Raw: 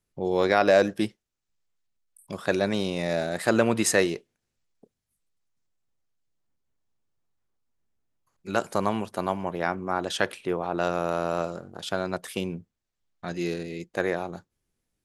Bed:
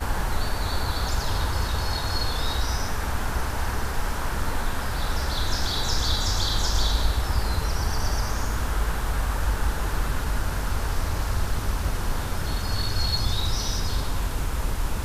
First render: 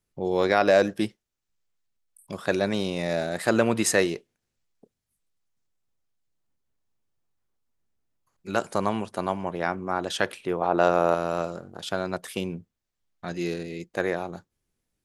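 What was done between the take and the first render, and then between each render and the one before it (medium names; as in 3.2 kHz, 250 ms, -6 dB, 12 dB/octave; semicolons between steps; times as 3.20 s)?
8.60–10.02 s: careless resampling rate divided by 2×, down none, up filtered; 10.61–11.15 s: peaking EQ 700 Hz +7 dB 2.7 oct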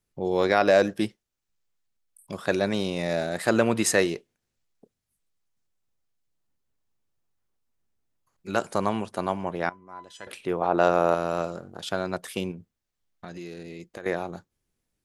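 9.69–10.27 s: feedback comb 1 kHz, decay 0.22 s, mix 90%; 12.51–14.06 s: compression, threshold -35 dBFS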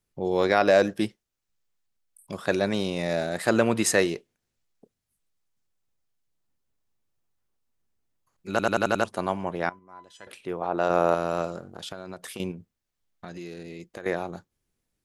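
8.50 s: stutter in place 0.09 s, 6 plays; 9.79–10.90 s: gain -4.5 dB; 11.68–12.40 s: compression 8:1, threshold -33 dBFS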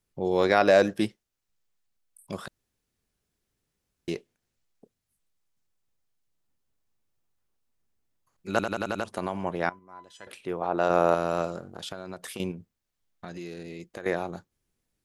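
2.48–4.08 s: room tone; 8.60–9.43 s: compression, threshold -24 dBFS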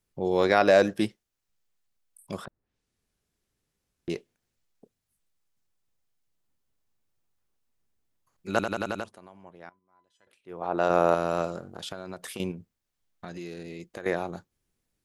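2.44–4.10 s: low-pass that closes with the level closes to 1.1 kHz, closed at -46 dBFS; 8.79–10.85 s: dip -19 dB, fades 0.39 s equal-power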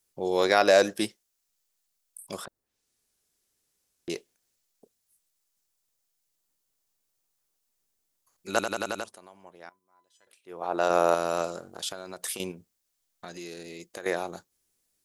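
tone controls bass -9 dB, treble +10 dB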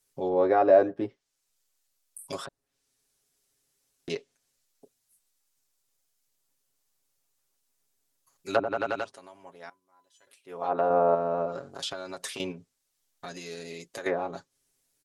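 low-pass that closes with the level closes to 840 Hz, closed at -23 dBFS; comb 7.3 ms, depth 78%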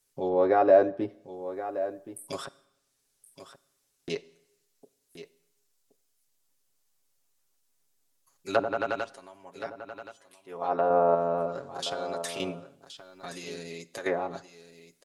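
on a send: delay 1073 ms -12.5 dB; on the sum: Schroeder reverb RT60 0.81 s, combs from 32 ms, DRR 19.5 dB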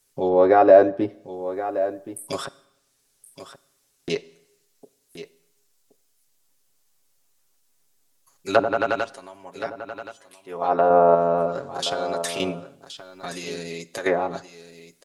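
trim +7 dB; peak limiter -2 dBFS, peak gain reduction 1 dB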